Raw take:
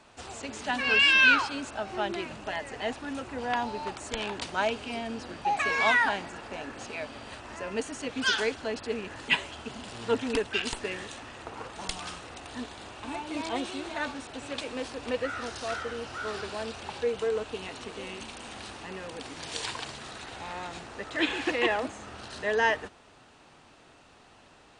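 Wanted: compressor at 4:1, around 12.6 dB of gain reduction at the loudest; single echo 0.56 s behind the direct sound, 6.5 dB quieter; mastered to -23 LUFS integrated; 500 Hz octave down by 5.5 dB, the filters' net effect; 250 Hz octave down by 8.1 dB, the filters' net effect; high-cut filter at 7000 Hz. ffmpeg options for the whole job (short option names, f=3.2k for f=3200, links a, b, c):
-af "lowpass=7k,equalizer=f=250:t=o:g=-8.5,equalizer=f=500:t=o:g=-4.5,acompressor=threshold=-32dB:ratio=4,aecho=1:1:560:0.473,volume=13.5dB"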